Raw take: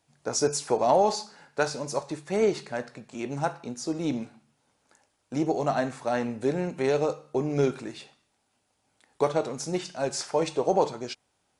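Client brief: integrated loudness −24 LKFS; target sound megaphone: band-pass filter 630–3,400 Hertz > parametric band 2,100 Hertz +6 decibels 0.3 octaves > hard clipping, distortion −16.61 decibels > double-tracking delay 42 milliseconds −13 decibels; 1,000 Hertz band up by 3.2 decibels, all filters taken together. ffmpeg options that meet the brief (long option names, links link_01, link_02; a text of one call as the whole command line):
ffmpeg -i in.wav -filter_complex "[0:a]highpass=630,lowpass=3400,equalizer=frequency=1000:width_type=o:gain=6,equalizer=frequency=2100:width_type=o:width=0.3:gain=6,asoftclip=type=hard:threshold=-16dB,asplit=2[link_01][link_02];[link_02]adelay=42,volume=-13dB[link_03];[link_01][link_03]amix=inputs=2:normalize=0,volume=6dB" out.wav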